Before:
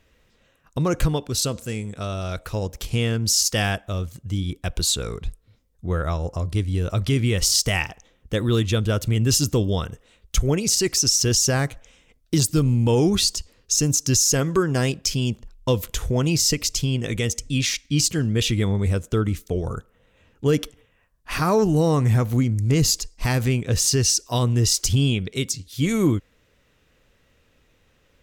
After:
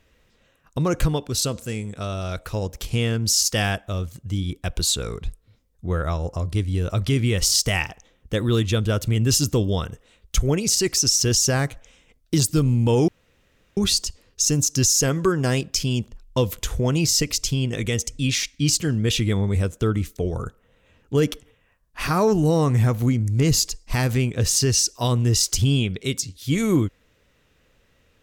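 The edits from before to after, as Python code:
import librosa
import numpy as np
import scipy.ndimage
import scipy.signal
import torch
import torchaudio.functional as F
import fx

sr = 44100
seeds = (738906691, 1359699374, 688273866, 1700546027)

y = fx.edit(x, sr, fx.insert_room_tone(at_s=13.08, length_s=0.69), tone=tone)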